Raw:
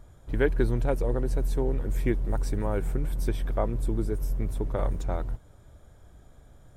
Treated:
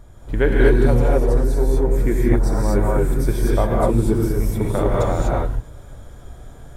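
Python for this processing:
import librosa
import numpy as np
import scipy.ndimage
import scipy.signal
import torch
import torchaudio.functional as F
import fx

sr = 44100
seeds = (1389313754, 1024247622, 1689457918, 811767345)

y = fx.rev_gated(x, sr, seeds[0], gate_ms=270, shape='rising', drr_db=-4.5)
y = fx.rider(y, sr, range_db=3, speed_s=2.0)
y = fx.peak_eq(y, sr, hz=2900.0, db=-8.5, octaves=0.53, at=(1.44, 3.71))
y = y * 10.0 ** (5.0 / 20.0)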